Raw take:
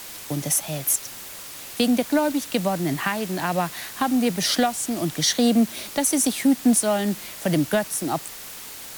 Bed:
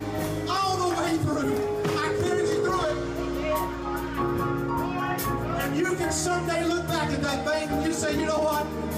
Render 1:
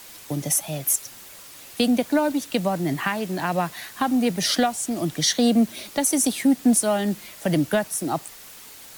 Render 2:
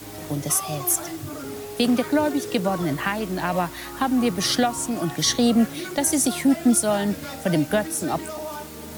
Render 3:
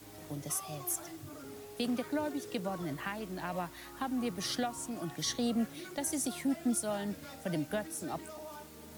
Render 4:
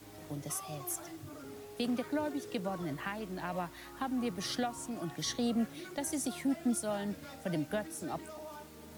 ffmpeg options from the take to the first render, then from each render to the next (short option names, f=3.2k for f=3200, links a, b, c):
-af "afftdn=nr=6:nf=-38"
-filter_complex "[1:a]volume=-8.5dB[a];[0:a][a]amix=inputs=2:normalize=0"
-af "volume=-13.5dB"
-af "highshelf=f=5.3k:g=-4"